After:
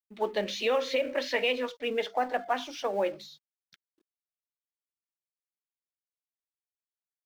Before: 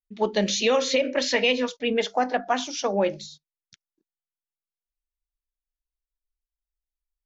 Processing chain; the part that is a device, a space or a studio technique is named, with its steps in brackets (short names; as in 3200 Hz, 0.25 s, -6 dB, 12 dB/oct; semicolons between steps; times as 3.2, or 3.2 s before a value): phone line with mismatched companding (BPF 330–3200 Hz; G.711 law mismatch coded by mu); gain -5 dB